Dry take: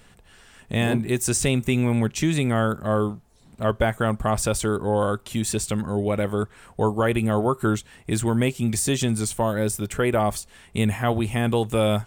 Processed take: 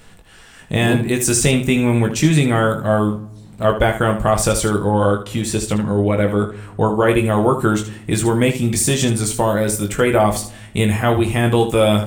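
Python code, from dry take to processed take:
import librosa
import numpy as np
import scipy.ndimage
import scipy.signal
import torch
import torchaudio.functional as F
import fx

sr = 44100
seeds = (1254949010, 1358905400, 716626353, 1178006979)

y = fx.high_shelf(x, sr, hz=4600.0, db=-6.5, at=(4.9, 7.09))
y = fx.room_early_taps(y, sr, ms=(20, 76), db=(-5.5, -10.5))
y = fx.room_shoebox(y, sr, seeds[0], volume_m3=2300.0, walls='furnished', distance_m=0.65)
y = y * 10.0 ** (5.5 / 20.0)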